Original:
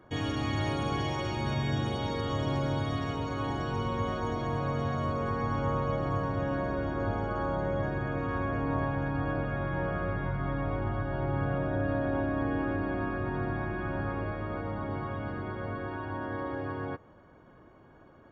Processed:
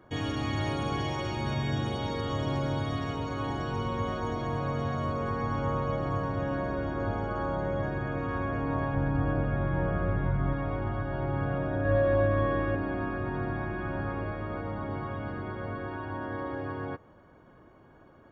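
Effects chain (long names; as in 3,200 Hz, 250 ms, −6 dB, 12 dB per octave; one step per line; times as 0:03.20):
0:08.94–0:10.53: spectral tilt −1.5 dB per octave
0:11.83–0:12.75: flutter between parallel walls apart 3.4 metres, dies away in 0.46 s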